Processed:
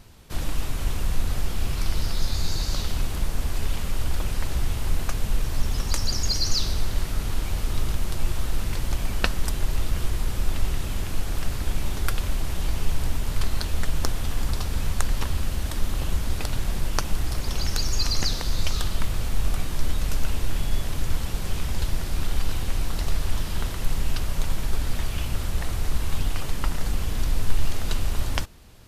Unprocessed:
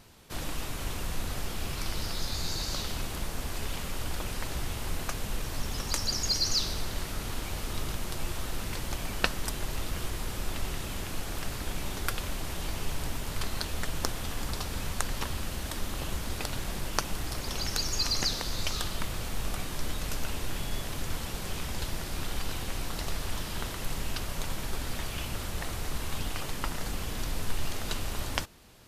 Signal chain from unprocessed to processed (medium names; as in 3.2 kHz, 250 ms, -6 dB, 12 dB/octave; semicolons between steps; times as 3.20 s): bass shelf 120 Hz +10.5 dB; trim +1.5 dB